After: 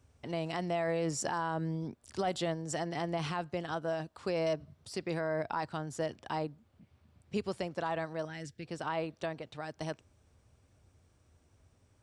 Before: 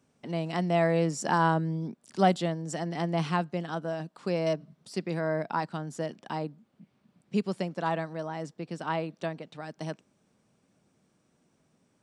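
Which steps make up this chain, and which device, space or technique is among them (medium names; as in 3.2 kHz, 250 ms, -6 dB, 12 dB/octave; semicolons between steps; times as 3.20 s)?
car stereo with a boomy subwoofer (resonant low shelf 120 Hz +14 dB, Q 3; peak limiter -23 dBFS, peak gain reduction 11 dB); 8.25–8.65 s: FFT filter 220 Hz 0 dB, 1.1 kHz -18 dB, 1.6 kHz +1 dB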